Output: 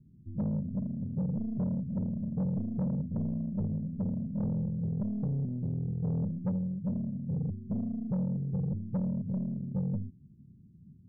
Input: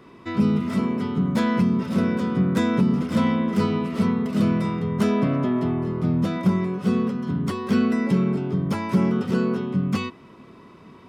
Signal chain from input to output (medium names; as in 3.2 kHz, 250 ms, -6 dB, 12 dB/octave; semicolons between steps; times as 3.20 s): tracing distortion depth 0.16 ms; inverse Chebyshev low-pass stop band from 1 kHz, stop band 80 dB; saturation -26.5 dBFS, distortion -11 dB